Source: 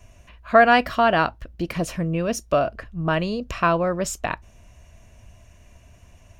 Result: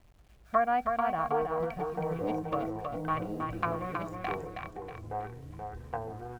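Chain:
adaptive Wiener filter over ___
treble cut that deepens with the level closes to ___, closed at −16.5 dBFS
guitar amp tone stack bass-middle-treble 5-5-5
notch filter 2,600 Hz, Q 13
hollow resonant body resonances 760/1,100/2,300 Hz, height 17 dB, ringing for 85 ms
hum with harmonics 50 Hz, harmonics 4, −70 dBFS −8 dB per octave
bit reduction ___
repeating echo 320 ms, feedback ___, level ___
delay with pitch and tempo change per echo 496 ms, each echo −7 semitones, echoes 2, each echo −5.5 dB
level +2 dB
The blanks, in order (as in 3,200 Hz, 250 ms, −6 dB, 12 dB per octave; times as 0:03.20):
41 samples, 980 Hz, 11 bits, 43%, −5 dB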